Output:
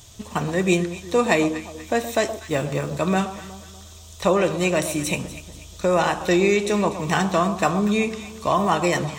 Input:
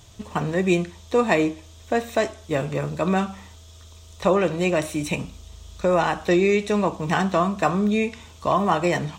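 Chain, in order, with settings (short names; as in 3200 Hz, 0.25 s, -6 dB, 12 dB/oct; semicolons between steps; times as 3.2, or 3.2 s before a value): 2.44–2.92 median filter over 3 samples; high shelf 4500 Hz +9.5 dB; echo with dull and thin repeats by turns 0.121 s, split 1100 Hz, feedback 62%, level -10.5 dB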